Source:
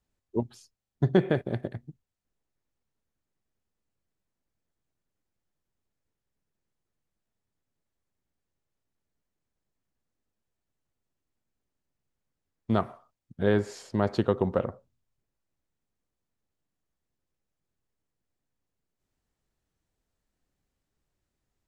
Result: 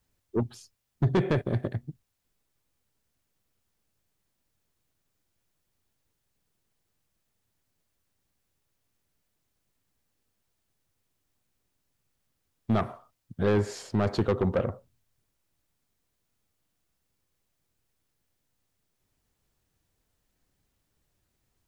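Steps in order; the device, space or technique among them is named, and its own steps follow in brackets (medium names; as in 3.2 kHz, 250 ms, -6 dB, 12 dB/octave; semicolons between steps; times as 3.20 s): open-reel tape (saturation -22.5 dBFS, distortion -7 dB; peaking EQ 100 Hz +4 dB 0.77 oct; white noise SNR 47 dB); trim +4 dB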